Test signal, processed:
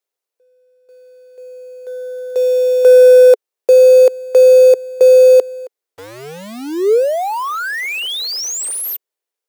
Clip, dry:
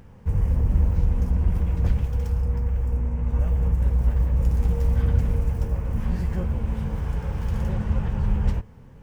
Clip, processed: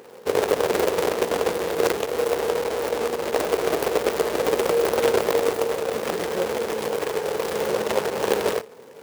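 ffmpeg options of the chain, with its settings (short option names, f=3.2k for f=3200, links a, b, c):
-af "acrusher=bits=2:mode=log:mix=0:aa=0.000001,highpass=f=440:t=q:w=4.1,volume=4.5dB"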